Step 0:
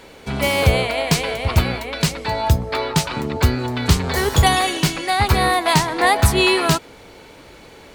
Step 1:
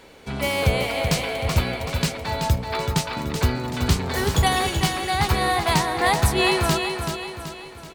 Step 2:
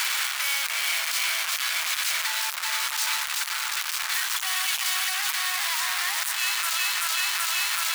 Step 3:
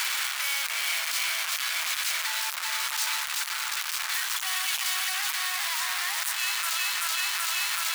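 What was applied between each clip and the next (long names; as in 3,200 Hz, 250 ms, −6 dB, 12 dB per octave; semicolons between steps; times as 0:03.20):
repeating echo 380 ms, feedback 46%, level −6.5 dB; level −5 dB
sign of each sample alone; high-pass filter 1,200 Hz 24 dB per octave
brickwall limiter −17.5 dBFS, peak gain reduction 3.5 dB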